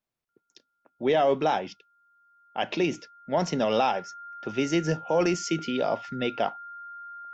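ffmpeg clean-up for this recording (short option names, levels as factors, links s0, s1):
-af "bandreject=f=1400:w=30"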